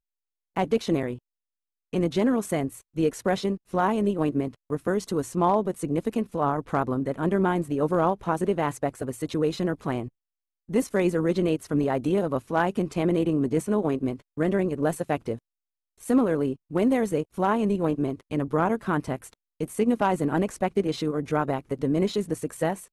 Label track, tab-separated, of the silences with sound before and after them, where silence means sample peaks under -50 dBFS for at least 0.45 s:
1.190000	1.930000	silence
10.090000	10.690000	silence
15.390000	15.980000	silence